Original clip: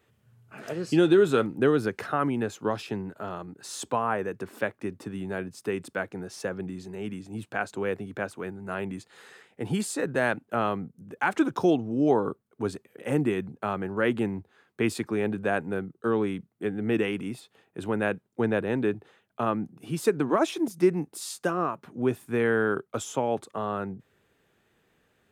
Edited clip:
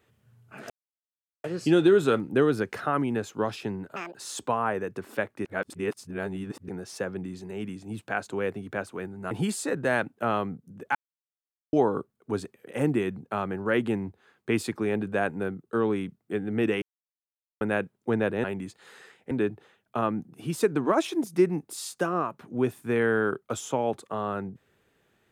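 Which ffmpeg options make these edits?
ffmpeg -i in.wav -filter_complex "[0:a]asplit=13[link_01][link_02][link_03][link_04][link_05][link_06][link_07][link_08][link_09][link_10][link_11][link_12][link_13];[link_01]atrim=end=0.7,asetpts=PTS-STARTPTS,afade=type=out:start_time=0.696:duration=0.004:curve=hsin,apad=pad_dur=0.74[link_14];[link_02]atrim=start=0.7:end=3.224,asetpts=PTS-STARTPTS,afade=type=in:duration=0.004:curve=hsin[link_15];[link_03]atrim=start=3.22:end=3.59,asetpts=PTS-STARTPTS,asetrate=85995,aresample=44100[link_16];[link_04]atrim=start=3.586:end=4.892[link_17];[link_05]atrim=start=4.888:end=6.132,asetpts=PTS-STARTPTS,areverse[link_18];[link_06]atrim=start=6.128:end=8.752[link_19];[link_07]atrim=start=9.618:end=11.26,asetpts=PTS-STARTPTS,afade=type=out:start_time=1.638:duration=0.004:curve=hsin[link_20];[link_08]atrim=start=11.26:end=12.04,asetpts=PTS-STARTPTS,volume=0[link_21];[link_09]atrim=start=12.04:end=17.13,asetpts=PTS-STARTPTS,afade=type=in:duration=0.004:curve=hsin,afade=type=out:start_time=5.086:duration=0.004:curve=hsin[link_22];[link_10]atrim=start=17.13:end=17.92,asetpts=PTS-STARTPTS,volume=0[link_23];[link_11]atrim=start=17.92:end=18.752,asetpts=PTS-STARTPTS,afade=type=in:duration=0.004:curve=hsin[link_24];[link_12]atrim=start=8.748:end=9.622[link_25];[link_13]atrim=start=18.748[link_26];[link_14][link_15]concat=n=2:v=0:a=1[link_27];[link_27][link_16]acrossfade=duration=0.004:curve1=hsin:curve2=hsin[link_28];[link_28][link_17]acrossfade=duration=0.004:curve1=hsin:curve2=hsin[link_29];[link_29][link_18]acrossfade=duration=0.004:curve1=hsin:curve2=hsin[link_30];[link_30][link_19]acrossfade=duration=0.004:curve1=hsin:curve2=hsin[link_31];[link_20][link_21][link_22][link_23][link_24]concat=n=5:v=0:a=1[link_32];[link_31][link_32]acrossfade=duration=0.004:curve1=hsin:curve2=hsin[link_33];[link_33][link_25]acrossfade=duration=0.004:curve1=hsin:curve2=hsin[link_34];[link_34][link_26]acrossfade=duration=0.004:curve1=hsin:curve2=hsin" out.wav

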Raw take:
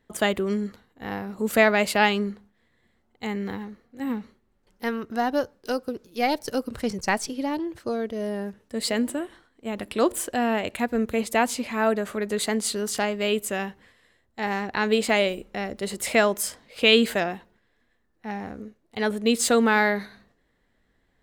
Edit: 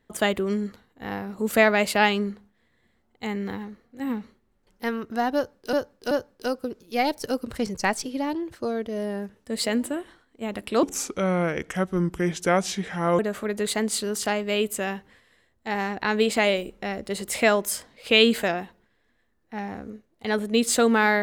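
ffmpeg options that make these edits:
ffmpeg -i in.wav -filter_complex "[0:a]asplit=5[link_01][link_02][link_03][link_04][link_05];[link_01]atrim=end=5.732[link_06];[link_02]atrim=start=5.348:end=5.732[link_07];[link_03]atrim=start=5.348:end=10.074[link_08];[link_04]atrim=start=10.07:end=11.91,asetpts=PTS-STARTPTS,asetrate=34398,aresample=44100[link_09];[link_05]atrim=start=11.906[link_10];[link_06][link_07]acrossfade=duration=0.004:curve1=hsin:curve2=hsin[link_11];[link_11][link_08]acrossfade=duration=0.004:curve1=hsin:curve2=hsin[link_12];[link_12][link_09]acrossfade=duration=0.004:curve1=hsin:curve2=hsin[link_13];[link_13][link_10]acrossfade=duration=0.004:curve1=hsin:curve2=hsin" out.wav

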